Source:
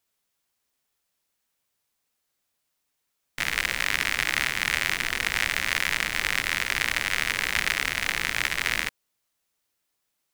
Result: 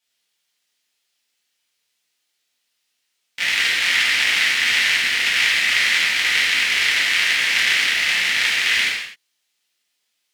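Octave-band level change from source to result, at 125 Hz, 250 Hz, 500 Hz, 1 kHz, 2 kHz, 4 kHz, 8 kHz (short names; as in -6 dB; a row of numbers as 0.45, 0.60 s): n/a, -1.0 dB, 0.0 dB, +1.5 dB, +8.5 dB, +11.5 dB, +6.5 dB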